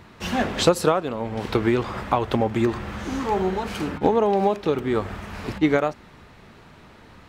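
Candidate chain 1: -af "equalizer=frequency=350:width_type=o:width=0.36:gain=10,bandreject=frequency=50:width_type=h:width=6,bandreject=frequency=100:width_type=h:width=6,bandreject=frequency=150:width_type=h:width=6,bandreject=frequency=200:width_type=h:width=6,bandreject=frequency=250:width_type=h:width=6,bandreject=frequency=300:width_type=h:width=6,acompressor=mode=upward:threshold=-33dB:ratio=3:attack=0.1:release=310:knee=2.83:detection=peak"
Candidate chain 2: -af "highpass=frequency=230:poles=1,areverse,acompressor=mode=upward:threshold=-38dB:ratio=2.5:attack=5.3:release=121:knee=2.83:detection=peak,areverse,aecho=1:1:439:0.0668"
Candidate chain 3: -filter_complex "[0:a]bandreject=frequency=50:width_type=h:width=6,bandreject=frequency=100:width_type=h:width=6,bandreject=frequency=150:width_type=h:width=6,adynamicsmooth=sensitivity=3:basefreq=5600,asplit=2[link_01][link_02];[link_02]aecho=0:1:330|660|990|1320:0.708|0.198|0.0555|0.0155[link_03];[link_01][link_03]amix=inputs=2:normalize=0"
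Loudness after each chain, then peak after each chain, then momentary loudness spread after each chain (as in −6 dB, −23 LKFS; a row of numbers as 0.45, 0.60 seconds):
−19.5, −24.5, −22.0 LKFS; −2.0, −4.5, −3.5 dBFS; 11, 14, 8 LU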